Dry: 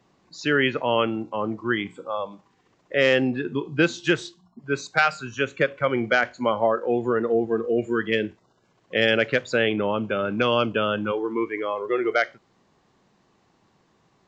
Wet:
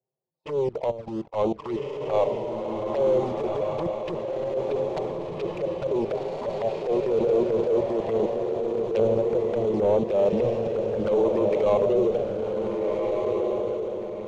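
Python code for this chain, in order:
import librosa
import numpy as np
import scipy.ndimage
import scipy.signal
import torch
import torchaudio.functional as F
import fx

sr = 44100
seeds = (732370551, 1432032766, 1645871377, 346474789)

y = fx.env_lowpass_down(x, sr, base_hz=320.0, full_db=-18.0)
y = scipy.signal.sosfilt(scipy.signal.butter(2, 210.0, 'highpass', fs=sr, output='sos'), y)
y = fx.env_lowpass(y, sr, base_hz=430.0, full_db=-22.5)
y = fx.high_shelf(y, sr, hz=3200.0, db=-7.0)
y = fx.leveller(y, sr, passes=3)
y = fx.level_steps(y, sr, step_db=20)
y = fx.fixed_phaser(y, sr, hz=650.0, stages=4)
y = fx.leveller(y, sr, passes=1)
y = fx.env_flanger(y, sr, rest_ms=7.7, full_db=-20.5)
y = fx.air_absorb(y, sr, metres=91.0)
y = fx.echo_diffused(y, sr, ms=1532, feedback_pct=42, wet_db=-3.0)
y = fx.transient(y, sr, attack_db=-10, sustain_db=2)
y = y * 10.0 ** (2.0 / 20.0)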